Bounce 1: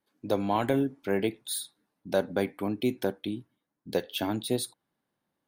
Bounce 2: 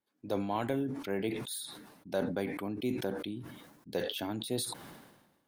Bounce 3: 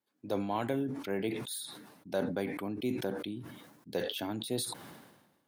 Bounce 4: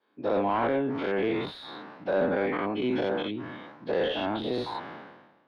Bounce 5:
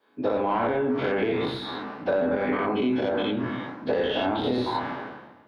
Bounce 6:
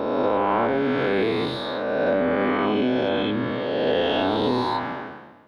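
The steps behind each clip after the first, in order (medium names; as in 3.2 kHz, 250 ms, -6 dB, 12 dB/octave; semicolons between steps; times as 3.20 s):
decay stretcher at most 50 dB/s; trim -7 dB
high-pass 72 Hz
every event in the spectrogram widened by 120 ms; overdrive pedal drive 17 dB, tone 1.7 kHz, clips at -14 dBFS; distance through air 280 m
on a send at -4.5 dB: reverberation RT60 0.80 s, pre-delay 6 ms; on the sum: compression, threshold -28 dBFS, peak gain reduction 9 dB; trim +6.5 dB
reverse spectral sustain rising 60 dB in 2.26 s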